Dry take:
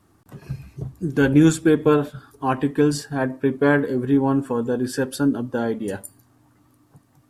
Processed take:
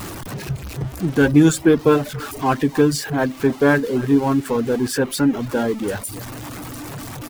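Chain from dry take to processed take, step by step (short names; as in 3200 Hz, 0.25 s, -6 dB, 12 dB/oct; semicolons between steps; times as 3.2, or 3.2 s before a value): zero-crossing step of -27 dBFS; speakerphone echo 0.28 s, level -16 dB; reverb removal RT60 0.61 s; gain +2 dB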